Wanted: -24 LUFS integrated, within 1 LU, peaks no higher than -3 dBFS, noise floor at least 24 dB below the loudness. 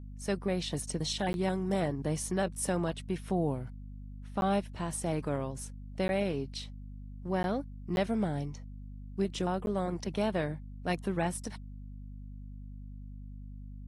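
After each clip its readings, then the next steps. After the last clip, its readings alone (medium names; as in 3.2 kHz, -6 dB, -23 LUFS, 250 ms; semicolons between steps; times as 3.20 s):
dropouts 6; longest dropout 11 ms; hum 50 Hz; highest harmonic 250 Hz; hum level -42 dBFS; loudness -33.5 LUFS; peak level -19.5 dBFS; loudness target -24.0 LUFS
-> interpolate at 1.33/4.41/6.08/7.43/7.96/9.66 s, 11 ms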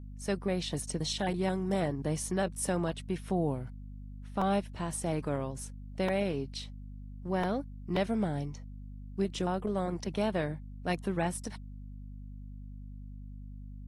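dropouts 0; hum 50 Hz; highest harmonic 250 Hz; hum level -42 dBFS
-> de-hum 50 Hz, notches 5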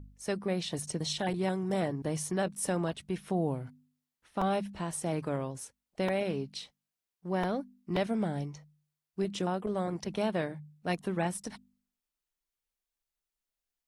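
hum not found; loudness -33.5 LUFS; peak level -19.0 dBFS; loudness target -24.0 LUFS
-> trim +9.5 dB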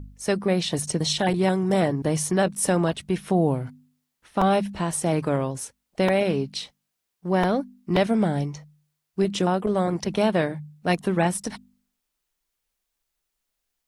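loudness -24.0 LUFS; peak level -9.5 dBFS; noise floor -81 dBFS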